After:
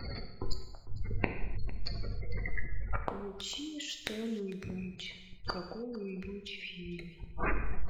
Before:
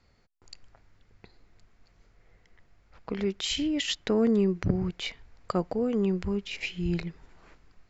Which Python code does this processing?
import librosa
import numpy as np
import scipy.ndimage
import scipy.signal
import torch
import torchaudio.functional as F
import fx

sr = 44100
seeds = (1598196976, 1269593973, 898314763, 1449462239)

p1 = fx.rattle_buzz(x, sr, strikes_db=-29.0, level_db=-22.0)
p2 = fx.spec_gate(p1, sr, threshold_db=-20, keep='strong')
p3 = fx.high_shelf(p2, sr, hz=3500.0, db=10.0)
p4 = fx.over_compress(p3, sr, threshold_db=-36.0, ratio=-1.0)
p5 = p3 + F.gain(torch.from_numpy(p4), -2.0).numpy()
p6 = np.clip(10.0 ** (16.5 / 20.0) * p5, -1.0, 1.0) / 10.0 ** (16.5 / 20.0)
p7 = fx.gate_flip(p6, sr, shuts_db=-36.0, range_db=-32)
p8 = p7 + 10.0 ** (-19.5 / 20.0) * np.pad(p7, (int(452 * sr / 1000.0), 0))[:len(p7)]
p9 = fx.rev_gated(p8, sr, seeds[0], gate_ms=340, shape='falling', drr_db=5.0)
y = F.gain(torch.from_numpy(p9), 15.5).numpy()